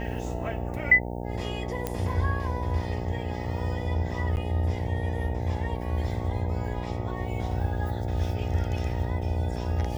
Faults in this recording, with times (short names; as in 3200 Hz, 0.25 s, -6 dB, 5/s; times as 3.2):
buzz 60 Hz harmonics 15 -33 dBFS
1.87 pop -14 dBFS
4.36–4.37 gap 9.8 ms